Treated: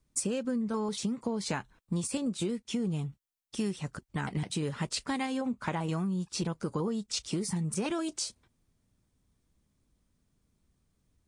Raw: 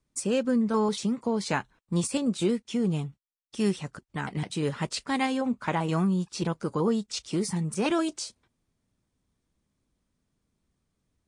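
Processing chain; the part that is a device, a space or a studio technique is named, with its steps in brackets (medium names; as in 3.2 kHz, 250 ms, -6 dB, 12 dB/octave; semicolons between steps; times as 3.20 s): ASMR close-microphone chain (bass shelf 140 Hz +6.5 dB; compression, threshold -29 dBFS, peak gain reduction 10 dB; treble shelf 6.9 kHz +5 dB)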